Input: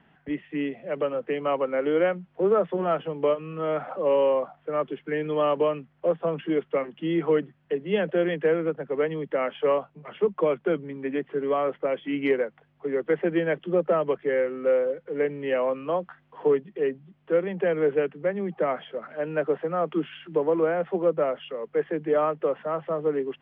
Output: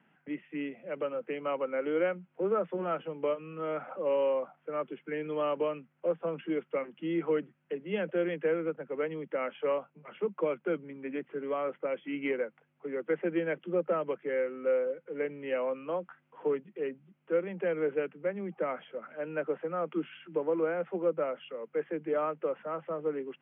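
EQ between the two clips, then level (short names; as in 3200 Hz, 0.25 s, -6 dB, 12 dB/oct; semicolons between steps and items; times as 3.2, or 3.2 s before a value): speaker cabinet 260–2500 Hz, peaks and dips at 280 Hz -4 dB, 410 Hz -7 dB, 680 Hz -4 dB, 1100 Hz -5 dB, 1800 Hz -8 dB; bell 750 Hz -6 dB 1.1 oct; 0.0 dB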